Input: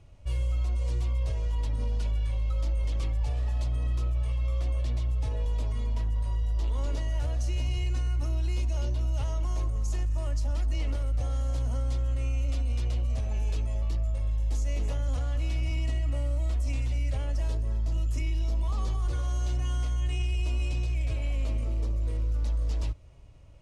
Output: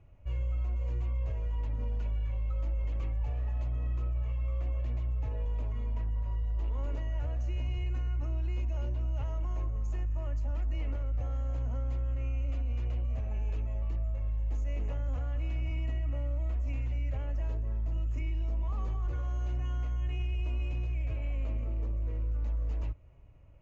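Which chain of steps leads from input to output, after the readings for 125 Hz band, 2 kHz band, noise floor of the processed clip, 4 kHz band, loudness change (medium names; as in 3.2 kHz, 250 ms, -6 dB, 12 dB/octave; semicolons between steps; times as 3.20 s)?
-4.0 dB, -6.0 dB, -33 dBFS, -11.5 dB, -4.0 dB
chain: high-order bell 4.3 kHz -10.5 dB 1 oct; resampled via 16 kHz; distance through air 140 m; trim -4 dB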